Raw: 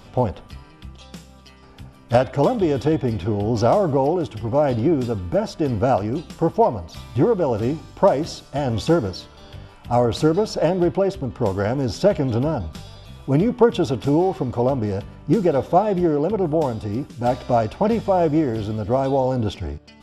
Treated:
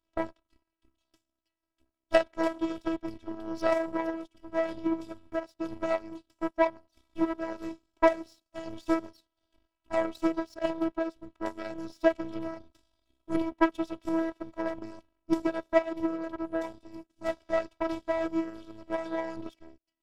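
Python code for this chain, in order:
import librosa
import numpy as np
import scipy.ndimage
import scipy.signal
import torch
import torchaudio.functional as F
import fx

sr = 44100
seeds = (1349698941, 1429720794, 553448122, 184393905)

y = fx.power_curve(x, sr, exponent=2.0)
y = fx.robotise(y, sr, hz=326.0)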